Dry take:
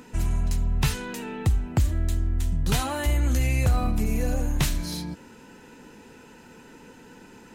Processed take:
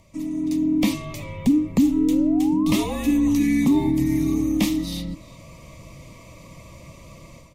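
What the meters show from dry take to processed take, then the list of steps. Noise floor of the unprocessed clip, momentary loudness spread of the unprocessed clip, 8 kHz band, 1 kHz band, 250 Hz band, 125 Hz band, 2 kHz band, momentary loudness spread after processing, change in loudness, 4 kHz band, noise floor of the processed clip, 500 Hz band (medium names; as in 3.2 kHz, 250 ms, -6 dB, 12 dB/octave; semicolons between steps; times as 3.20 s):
-49 dBFS, 9 LU, -1.0 dB, -1.0 dB, +14.0 dB, -5.5 dB, -1.0 dB, 11 LU, +5.0 dB, +1.0 dB, -46 dBFS, +4.0 dB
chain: frequency shift -350 Hz; dynamic bell 8.9 kHz, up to -5 dB, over -48 dBFS, Q 0.88; level rider gain up to 12 dB; painted sound rise, 1.96–3.03 s, 390–1900 Hz -32 dBFS; Butterworth band-stop 1.5 kHz, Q 2.1; peaking EQ 100 Hz -5 dB 0.34 oct; speakerphone echo 360 ms, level -18 dB; trim -6 dB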